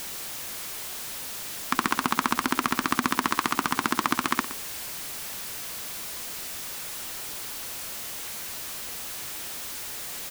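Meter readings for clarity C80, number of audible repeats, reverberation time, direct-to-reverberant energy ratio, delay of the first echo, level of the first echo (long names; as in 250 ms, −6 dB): no reverb audible, 1, no reverb audible, no reverb audible, 119 ms, −15.0 dB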